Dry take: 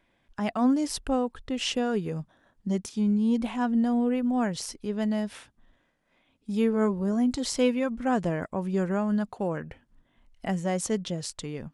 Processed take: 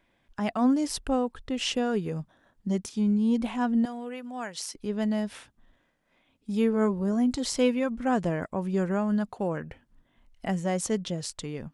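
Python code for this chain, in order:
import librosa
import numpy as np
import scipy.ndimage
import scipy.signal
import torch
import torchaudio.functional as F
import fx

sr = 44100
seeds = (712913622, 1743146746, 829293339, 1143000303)

y = fx.highpass(x, sr, hz=1200.0, slope=6, at=(3.85, 4.75))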